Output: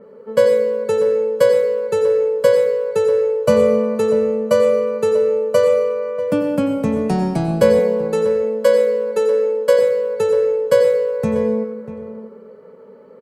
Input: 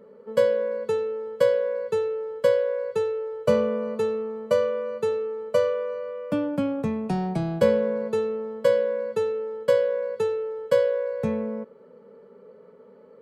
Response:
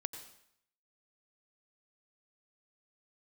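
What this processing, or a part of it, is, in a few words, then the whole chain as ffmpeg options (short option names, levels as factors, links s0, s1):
bathroom: -filter_complex "[1:a]atrim=start_sample=2205[s0];[0:a][s0]afir=irnorm=-1:irlink=0,asettb=1/sr,asplit=3[s1][s2][s3];[s1]atrim=end=7.794[s4];[s2]atrim=start=7.79:end=9.79,asetpts=PTS-STARTPTS,afade=t=in:d=0.004:c=qsin,afade=t=out:st=1.996:d=0.004:c=qsin,highpass=270[s5];[s3]atrim=start=9.786[s6];[s4][s5]acrossfade=d=0.004:c1=hsin:c2=qsin[s7];[s7][s6]acrossfade=d=0.004:c1=qsin:c2=hsin,equalizer=f=3500:w=6.3:g=-4.5,asplit=2[s8][s9];[s9]adelay=641.4,volume=0.224,highshelf=f=4000:g=-14.4[s10];[s8][s10]amix=inputs=2:normalize=0,adynamicequalizer=threshold=0.00282:dfrequency=5200:dqfactor=0.7:tfrequency=5200:tqfactor=0.7:attack=5:release=100:ratio=0.375:range=3.5:mode=boostabove:tftype=highshelf,volume=2.51"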